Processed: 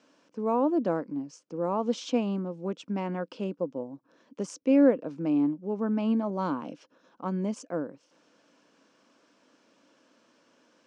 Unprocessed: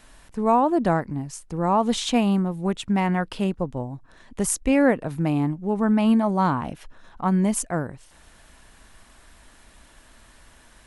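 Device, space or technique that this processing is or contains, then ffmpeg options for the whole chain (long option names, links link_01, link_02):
television speaker: -filter_complex "[0:a]lowpass=7600,highpass=frequency=180:width=0.5412,highpass=frequency=180:width=1.3066,equalizer=frequency=290:width_type=q:width=4:gain=9,equalizer=frequency=510:width_type=q:width=4:gain=10,equalizer=frequency=770:width_type=q:width=4:gain=-5,equalizer=frequency=1900:width_type=q:width=4:gain=-9,equalizer=frequency=3800:width_type=q:width=4:gain=-6,equalizer=frequency=5600:width_type=q:width=4:gain=4,lowpass=frequency=6500:width=0.5412,lowpass=frequency=6500:width=1.3066,asettb=1/sr,asplit=3[link_01][link_02][link_03];[link_01]atrim=end=6.304[link_04];[link_02]atrim=start=6.3:end=7.32,asetpts=PTS-STARTPTS,afade=type=in:duration=0.004:curve=qsin,afade=type=out:start_time=1.016:duration=0.004:curve=qsin,adynamicequalizer=threshold=0.0126:dfrequency=2500:dqfactor=0.7:tfrequency=2500:tqfactor=0.7:attack=5:release=100:ratio=0.375:range=2.5:mode=boostabove:tftype=highshelf[link_05];[link_03]atrim=start=7.316[link_06];[link_04][link_05]acrossfade=duration=0.004:curve1=hsin:curve2=qsin[link_07];[link_07][link_06]acrossfade=duration=0.004:curve1=qsin:curve2=hsin,volume=-9dB"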